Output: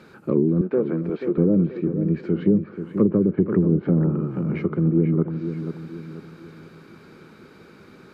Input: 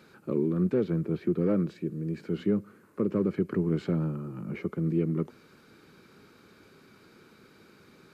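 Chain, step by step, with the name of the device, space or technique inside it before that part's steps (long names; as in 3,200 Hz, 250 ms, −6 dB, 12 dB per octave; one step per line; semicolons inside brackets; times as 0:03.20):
0:00.61–0:01.38: high-pass filter 380 Hz 12 dB per octave
treble cut that deepens with the level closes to 420 Hz, closed at −22 dBFS
behind a face mask (high-shelf EQ 3,100 Hz −7.5 dB)
delay with a low-pass on its return 485 ms, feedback 41%, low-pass 3,300 Hz, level −9 dB
level +8.5 dB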